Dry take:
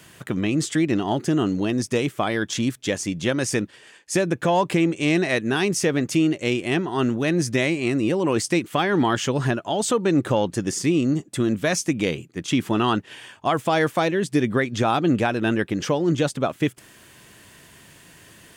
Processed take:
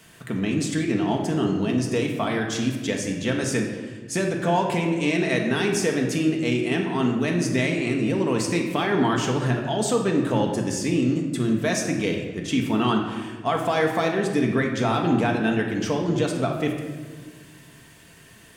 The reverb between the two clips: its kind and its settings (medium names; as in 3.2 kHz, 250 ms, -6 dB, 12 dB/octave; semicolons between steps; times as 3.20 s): simulated room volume 1300 m³, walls mixed, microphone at 1.6 m; trim -4 dB